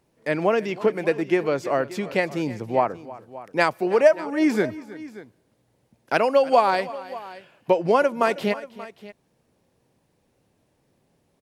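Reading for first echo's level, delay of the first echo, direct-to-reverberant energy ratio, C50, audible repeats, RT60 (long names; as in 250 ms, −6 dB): −18.5 dB, 319 ms, no reverb audible, no reverb audible, 2, no reverb audible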